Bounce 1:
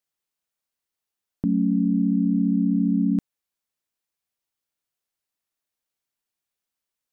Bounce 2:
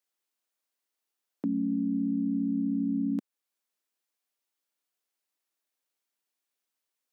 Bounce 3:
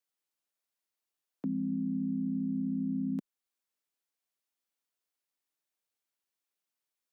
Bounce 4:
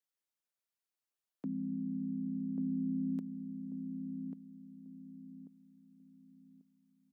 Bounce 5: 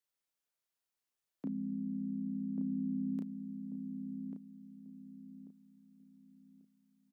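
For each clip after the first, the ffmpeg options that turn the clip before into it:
-af "highpass=f=230:w=0.5412,highpass=f=230:w=1.3066,alimiter=limit=0.0841:level=0:latency=1:release=422"
-af "afreqshift=-15,volume=0.631"
-filter_complex "[0:a]asplit=2[s0][s1];[s1]adelay=1140,lowpass=f=840:p=1,volume=0.562,asplit=2[s2][s3];[s3]adelay=1140,lowpass=f=840:p=1,volume=0.34,asplit=2[s4][s5];[s5]adelay=1140,lowpass=f=840:p=1,volume=0.34,asplit=2[s6][s7];[s7]adelay=1140,lowpass=f=840:p=1,volume=0.34[s8];[s0][s2][s4][s6][s8]amix=inputs=5:normalize=0,volume=0.562"
-filter_complex "[0:a]asplit=2[s0][s1];[s1]adelay=33,volume=0.631[s2];[s0][s2]amix=inputs=2:normalize=0"

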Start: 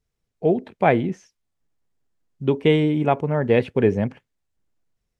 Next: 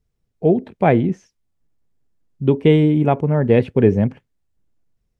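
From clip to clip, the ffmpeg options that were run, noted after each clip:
-af "lowshelf=f=460:g=9,volume=0.841"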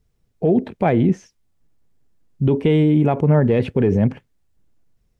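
-filter_complex "[0:a]asplit=2[s0][s1];[s1]volume=1.88,asoftclip=hard,volume=0.531,volume=0.316[s2];[s0][s2]amix=inputs=2:normalize=0,alimiter=level_in=3.35:limit=0.891:release=50:level=0:latency=1,volume=0.447"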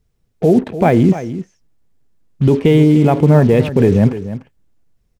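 -filter_complex "[0:a]asplit=2[s0][s1];[s1]acrusher=bits=4:mix=0:aa=0.5,volume=0.501[s2];[s0][s2]amix=inputs=2:normalize=0,aecho=1:1:297:0.224,volume=1.19"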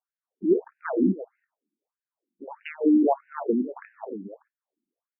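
-filter_complex "[0:a]acrossover=split=110|640|1400[s0][s1][s2][s3];[s3]acrusher=bits=3:mix=0:aa=0.000001[s4];[s0][s1][s2][s4]amix=inputs=4:normalize=0,afftfilt=real='re*between(b*sr/1024,250*pow(2100/250,0.5+0.5*sin(2*PI*1.6*pts/sr))/1.41,250*pow(2100/250,0.5+0.5*sin(2*PI*1.6*pts/sr))*1.41)':imag='im*between(b*sr/1024,250*pow(2100/250,0.5+0.5*sin(2*PI*1.6*pts/sr))/1.41,250*pow(2100/250,0.5+0.5*sin(2*PI*1.6*pts/sr))*1.41)':win_size=1024:overlap=0.75,volume=0.531"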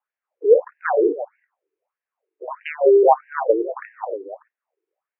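-af "highpass=f=310:t=q:w=0.5412,highpass=f=310:t=q:w=1.307,lowpass=f=2500:t=q:w=0.5176,lowpass=f=2500:t=q:w=0.7071,lowpass=f=2500:t=q:w=1.932,afreqshift=96,volume=2.82"

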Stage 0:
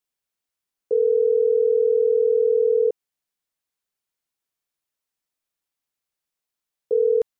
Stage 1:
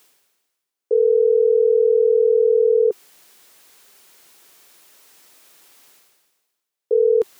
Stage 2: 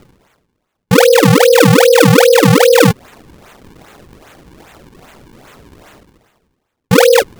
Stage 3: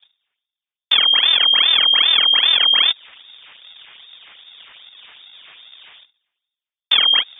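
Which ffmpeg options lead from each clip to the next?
-af "highpass=f=300:p=1,equalizer=f=390:t=o:w=0.59:g=5,areverse,acompressor=mode=upward:threshold=0.0447:ratio=2.5,areverse,volume=1.19"
-filter_complex "[0:a]asplit=2[s0][s1];[s1]alimiter=limit=0.126:level=0:latency=1:release=14,volume=0.891[s2];[s0][s2]amix=inputs=2:normalize=0,afreqshift=35,acrusher=samples=39:mix=1:aa=0.000001:lfo=1:lforange=62.4:lforate=2.5,volume=1.88"
-filter_complex "[0:a]lowpass=f=3100:t=q:w=0.5098,lowpass=f=3100:t=q:w=0.6013,lowpass=f=3100:t=q:w=0.9,lowpass=f=3100:t=q:w=2.563,afreqshift=-3700,acrossover=split=200|720[s0][s1][s2];[s0]acompressor=threshold=0.00282:ratio=4[s3];[s1]acompressor=threshold=0.0141:ratio=4[s4];[s2]acompressor=threshold=0.355:ratio=4[s5];[s3][s4][s5]amix=inputs=3:normalize=0,agate=range=0.112:threshold=0.00631:ratio=16:detection=peak,volume=0.75"

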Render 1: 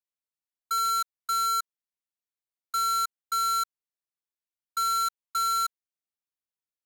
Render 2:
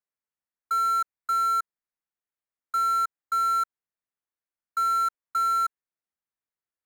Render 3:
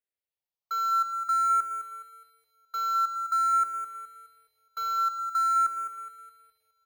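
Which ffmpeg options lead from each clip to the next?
-af "highshelf=f=2500:t=q:w=1.5:g=-9,volume=1.12"
-filter_complex "[0:a]asplit=2[s0][s1];[s1]aecho=0:1:209|418|627|836|1045|1254:0.335|0.178|0.0941|0.0499|0.0264|0.014[s2];[s0][s2]amix=inputs=2:normalize=0,asplit=2[s3][s4];[s4]afreqshift=0.48[s5];[s3][s5]amix=inputs=2:normalize=1"

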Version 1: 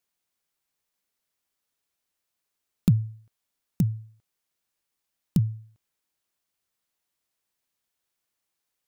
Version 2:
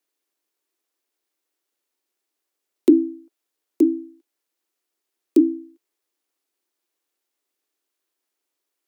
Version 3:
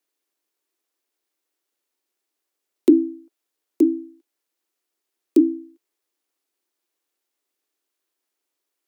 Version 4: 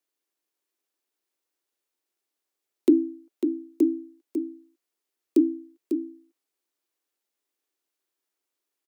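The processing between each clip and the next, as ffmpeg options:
-af "afreqshift=-140,aeval=exprs='val(0)*sin(2*PI*300*n/s)':c=same,lowshelf=f=220:t=q:w=3:g=-13.5,volume=1.5"
-af anull
-af "aecho=1:1:548:0.422,volume=0.596"

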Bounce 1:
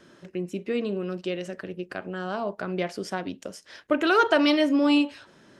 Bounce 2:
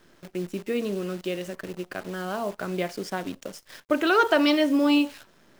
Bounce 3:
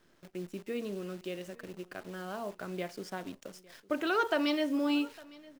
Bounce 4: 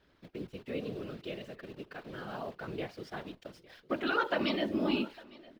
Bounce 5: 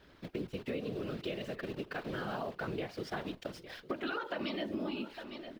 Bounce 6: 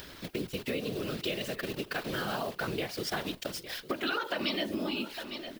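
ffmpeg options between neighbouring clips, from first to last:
-af "acrusher=bits=8:dc=4:mix=0:aa=0.000001"
-af "aecho=1:1:856:0.075,volume=0.355"
-af "highshelf=f=5300:t=q:w=1.5:g=-9.5,afftfilt=real='hypot(re,im)*cos(2*PI*random(0))':imag='hypot(re,im)*sin(2*PI*random(1))':win_size=512:overlap=0.75,volume=1.68"
-af "alimiter=level_in=1.06:limit=0.0631:level=0:latency=1:release=352,volume=0.944,acompressor=threshold=0.00794:ratio=6,volume=2.37"
-af "acompressor=mode=upward:threshold=0.00501:ratio=2.5,crystalizer=i=4:c=0,volume=1.41"

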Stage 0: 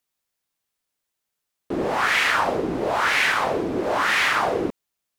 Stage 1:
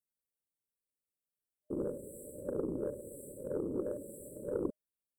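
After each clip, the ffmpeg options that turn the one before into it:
-af "afftfilt=real='re*(1-between(b*sr/4096,610,7600))':imag='im*(1-between(b*sr/4096,610,7600))':win_size=4096:overlap=0.75,aeval=exprs='0.355*(cos(1*acos(clip(val(0)/0.355,-1,1)))-cos(1*PI/2))+0.0708*(cos(3*acos(clip(val(0)/0.355,-1,1)))-cos(3*PI/2))+0.0158*(cos(4*acos(clip(val(0)/0.355,-1,1)))-cos(4*PI/2))+0.00562*(cos(6*acos(clip(val(0)/0.355,-1,1)))-cos(6*PI/2))':c=same,volume=0.631"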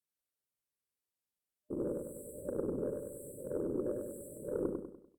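-filter_complex "[0:a]asplit=2[s0][s1];[s1]aecho=0:1:98|196|294|392|490:0.631|0.265|0.111|0.0467|0.0196[s2];[s0][s2]amix=inputs=2:normalize=0,volume=0.841" -ar 48000 -c:a libvorbis -b:a 192k

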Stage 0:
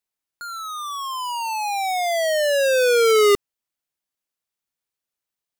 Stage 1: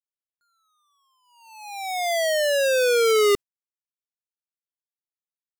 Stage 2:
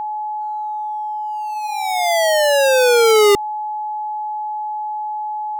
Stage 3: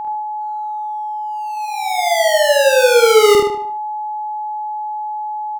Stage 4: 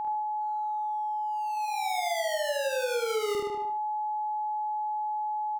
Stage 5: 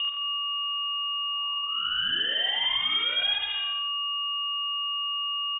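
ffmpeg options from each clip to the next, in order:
-filter_complex "[0:a]agate=range=0.0126:threshold=0.0562:ratio=16:detection=peak,equalizer=f=890:w=1.1:g=-3.5,asplit=2[s0][s1];[s1]alimiter=limit=0.0794:level=0:latency=1:release=122,volume=1.19[s2];[s0][s2]amix=inputs=2:normalize=0,volume=0.531"
-af "aeval=exprs='val(0)+0.0398*sin(2*PI*850*n/s)':c=same,volume=2.11"
-filter_complex "[0:a]asplit=2[s0][s1];[s1]adelay=48,volume=0.531[s2];[s0][s2]amix=inputs=2:normalize=0,asplit=2[s3][s4];[s4]adelay=75,lowpass=f=4900:p=1,volume=0.631,asplit=2[s5][s6];[s6]adelay=75,lowpass=f=4900:p=1,volume=0.43,asplit=2[s7][s8];[s8]adelay=75,lowpass=f=4900:p=1,volume=0.43,asplit=2[s9][s10];[s10]adelay=75,lowpass=f=4900:p=1,volume=0.43,asplit=2[s11][s12];[s12]adelay=75,lowpass=f=4900:p=1,volume=0.43[s13];[s3][s5][s7][s9][s11][s13]amix=inputs=6:normalize=0,volume=0.891"
-af "acompressor=threshold=0.112:ratio=12,volume=0.447"
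-af "asoftclip=type=tanh:threshold=0.02,aecho=1:1:91|182|273|364:0.631|0.196|0.0606|0.0188,lowpass=f=3100:t=q:w=0.5098,lowpass=f=3100:t=q:w=0.6013,lowpass=f=3100:t=q:w=0.9,lowpass=f=3100:t=q:w=2.563,afreqshift=-3700,volume=2.66"

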